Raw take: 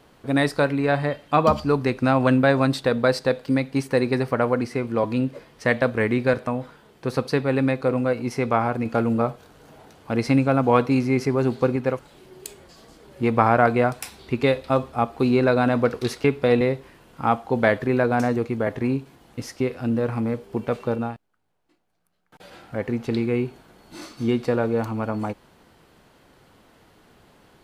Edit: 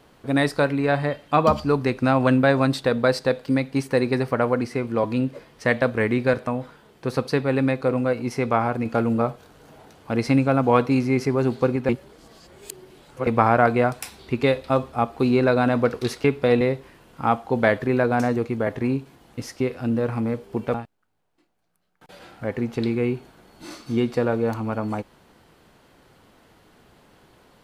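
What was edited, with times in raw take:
11.89–13.27 s: reverse
20.74–21.05 s: delete

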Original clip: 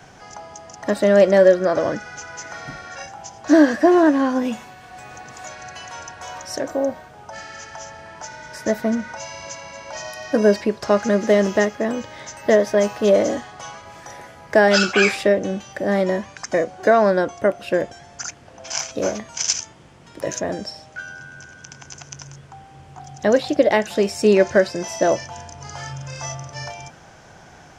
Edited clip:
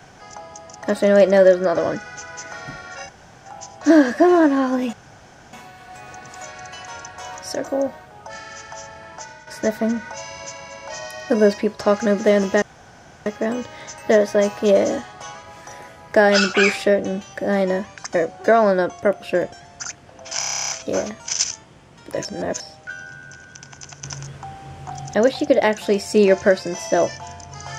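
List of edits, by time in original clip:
3.09 s: insert room tone 0.37 s
4.56 s: insert room tone 0.60 s
8.12–8.50 s: fade out equal-power, to -9 dB
11.65 s: insert room tone 0.64 s
18.78 s: stutter 0.03 s, 11 plays
20.34–20.69 s: reverse
22.13–23.23 s: gain +6.5 dB

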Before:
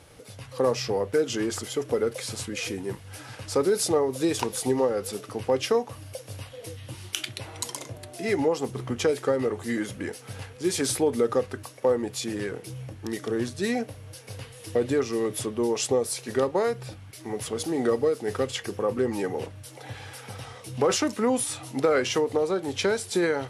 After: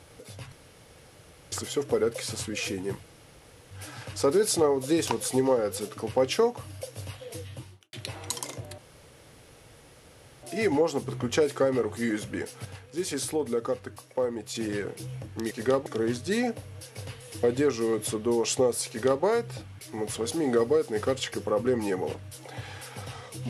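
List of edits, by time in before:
0.52–1.52 s: room tone
3.03 s: insert room tone 0.68 s
6.77–7.25 s: studio fade out
8.10 s: insert room tone 1.65 s
10.32–12.22 s: gain -5 dB
16.20–16.55 s: copy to 13.18 s

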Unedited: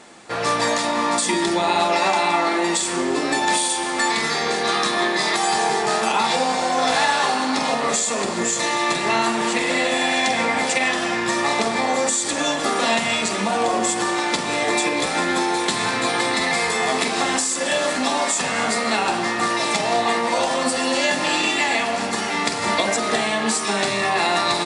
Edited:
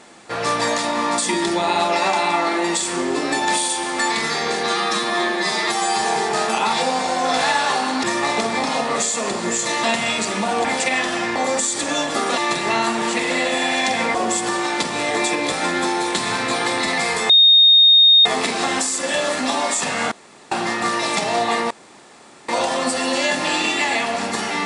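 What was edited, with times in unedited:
4.66–5.59 s: stretch 1.5×
8.77–10.54 s: swap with 12.87–13.68 s
11.25–11.85 s: move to 7.57 s
16.83 s: add tone 3.7 kHz -7.5 dBFS 0.96 s
18.69–19.09 s: room tone
20.28 s: insert room tone 0.78 s

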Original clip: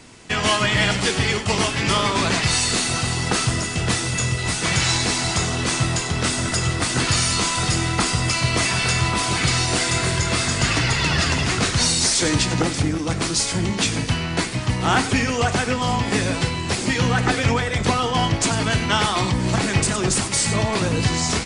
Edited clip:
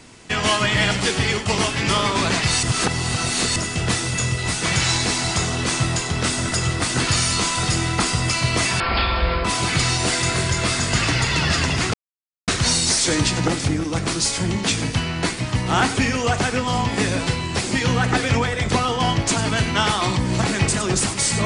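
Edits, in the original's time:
2.63–3.56 s: reverse
8.80–9.13 s: speed 51%
11.62 s: insert silence 0.54 s

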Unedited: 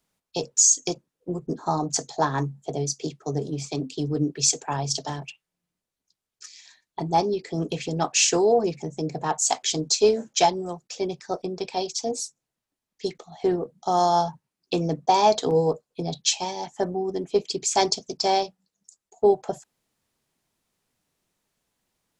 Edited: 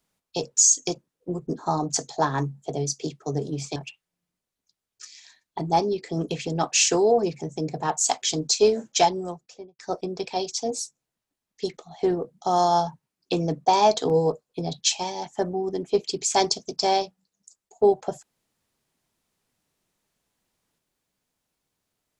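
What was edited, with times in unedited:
3.76–5.17 s: delete
10.63–11.20 s: studio fade out

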